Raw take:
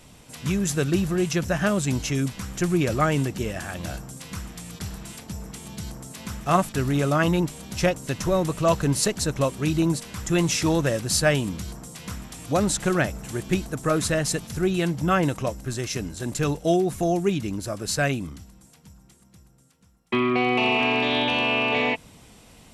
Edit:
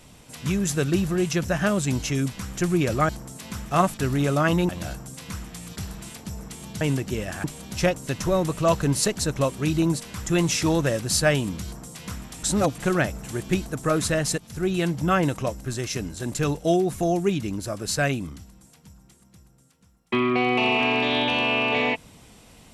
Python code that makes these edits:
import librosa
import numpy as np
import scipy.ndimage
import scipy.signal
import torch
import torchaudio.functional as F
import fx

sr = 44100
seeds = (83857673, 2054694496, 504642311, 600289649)

y = fx.edit(x, sr, fx.swap(start_s=3.09, length_s=0.63, other_s=5.84, other_length_s=1.6),
    fx.reverse_span(start_s=12.43, length_s=0.35),
    fx.fade_in_from(start_s=14.38, length_s=0.49, curve='qsin', floor_db=-14.5), tone=tone)